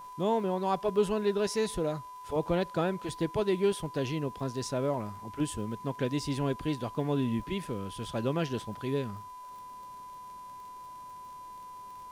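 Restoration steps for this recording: de-click; de-hum 402.1 Hz, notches 34; notch 1000 Hz, Q 30

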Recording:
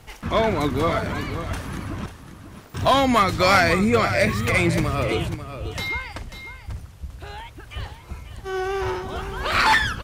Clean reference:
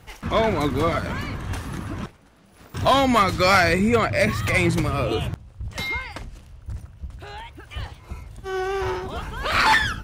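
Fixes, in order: expander -34 dBFS, range -21 dB; inverse comb 0.542 s -11 dB

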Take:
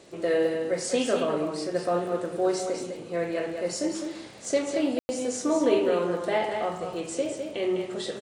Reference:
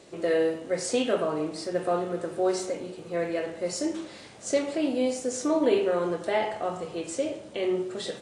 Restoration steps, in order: de-click; room tone fill 4.99–5.09; inverse comb 0.205 s -6.5 dB

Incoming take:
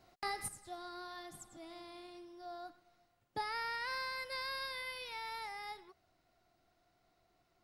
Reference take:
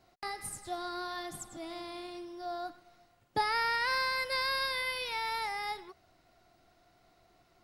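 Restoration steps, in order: gain correction +9 dB, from 0.48

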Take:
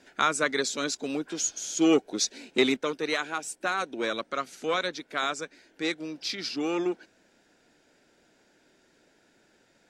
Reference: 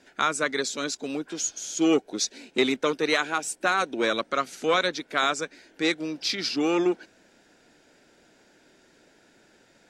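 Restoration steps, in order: gain 0 dB, from 2.77 s +5 dB

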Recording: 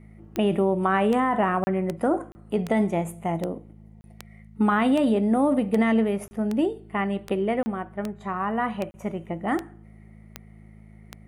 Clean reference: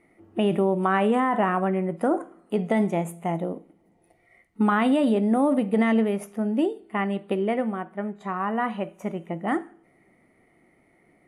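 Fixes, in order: de-click; de-hum 53.4 Hz, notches 4; interpolate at 1.64/2.32/4.01/6.28/7.63/8.91, 30 ms

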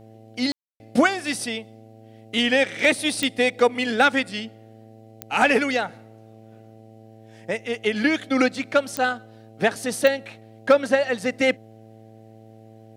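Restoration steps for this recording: clip repair -7 dBFS; de-click; de-hum 110.7 Hz, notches 7; room tone fill 0.52–0.8

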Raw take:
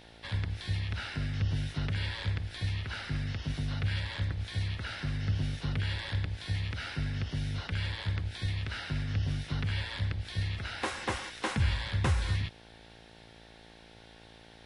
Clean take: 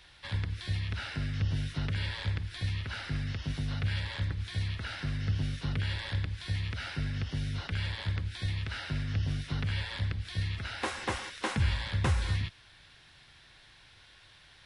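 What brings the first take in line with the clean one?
de-hum 56.2 Hz, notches 16

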